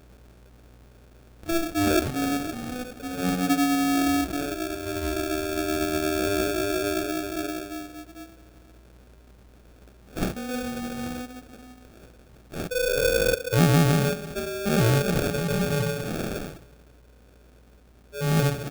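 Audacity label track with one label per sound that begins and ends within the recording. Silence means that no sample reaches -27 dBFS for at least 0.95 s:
1.490000	7.780000	sound
10.170000	11.210000	sound
12.550000	16.480000	sound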